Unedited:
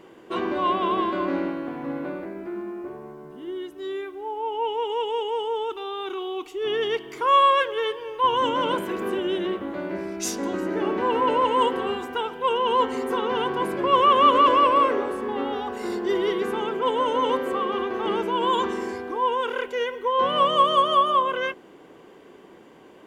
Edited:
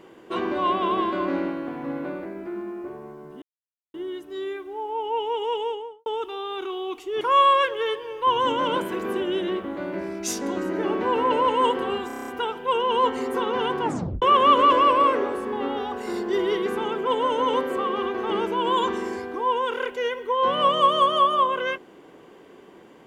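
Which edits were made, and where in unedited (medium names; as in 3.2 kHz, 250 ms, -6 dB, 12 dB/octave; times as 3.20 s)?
3.42 s: insert silence 0.52 s
5.05–5.54 s: studio fade out
6.69–7.18 s: delete
12.04 s: stutter 0.03 s, 8 plays
13.58 s: tape stop 0.40 s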